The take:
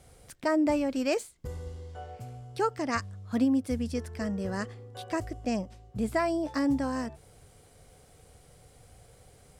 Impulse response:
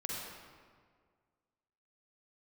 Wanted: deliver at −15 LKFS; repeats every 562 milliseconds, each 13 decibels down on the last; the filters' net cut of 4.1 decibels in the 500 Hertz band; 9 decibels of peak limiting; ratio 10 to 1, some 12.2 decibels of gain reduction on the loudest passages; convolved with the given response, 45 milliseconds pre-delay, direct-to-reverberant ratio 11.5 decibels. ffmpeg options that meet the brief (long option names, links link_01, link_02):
-filter_complex "[0:a]equalizer=frequency=500:width_type=o:gain=-5.5,acompressor=threshold=-36dB:ratio=10,alimiter=level_in=11dB:limit=-24dB:level=0:latency=1,volume=-11dB,aecho=1:1:562|1124|1686:0.224|0.0493|0.0108,asplit=2[link_01][link_02];[1:a]atrim=start_sample=2205,adelay=45[link_03];[link_02][link_03]afir=irnorm=-1:irlink=0,volume=-13.5dB[link_04];[link_01][link_04]amix=inputs=2:normalize=0,volume=29dB"